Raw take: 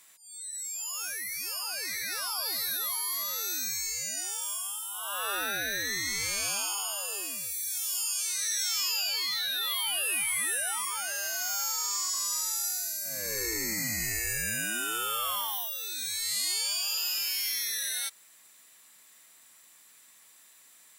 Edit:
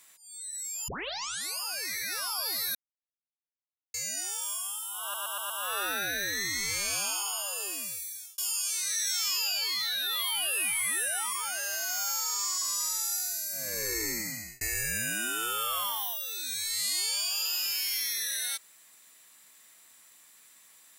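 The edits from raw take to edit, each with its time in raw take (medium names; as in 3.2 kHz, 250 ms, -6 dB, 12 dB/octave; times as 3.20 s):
0.88 s: tape start 0.72 s
2.75–3.94 s: mute
5.02 s: stutter 0.12 s, 5 plays
7.37–7.90 s: fade out
13.60–14.13 s: fade out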